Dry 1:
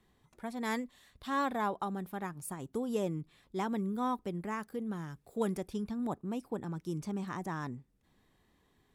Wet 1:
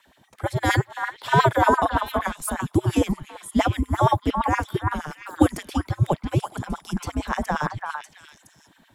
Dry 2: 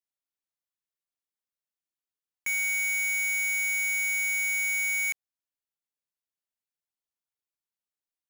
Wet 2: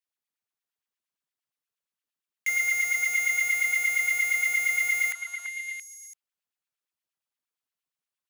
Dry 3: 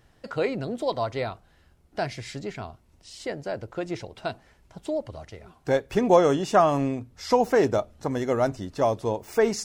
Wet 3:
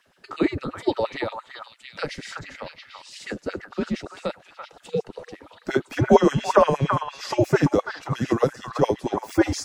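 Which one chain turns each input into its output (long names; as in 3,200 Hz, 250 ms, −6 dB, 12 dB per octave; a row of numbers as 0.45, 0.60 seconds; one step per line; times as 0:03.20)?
auto-filter high-pass sine 8.6 Hz 240–2,900 Hz
frequency shifter −130 Hz
echo through a band-pass that steps 337 ms, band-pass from 1,200 Hz, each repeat 1.4 octaves, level −2 dB
loudness normalisation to −24 LKFS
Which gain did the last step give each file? +13.0, 0.0, +0.5 decibels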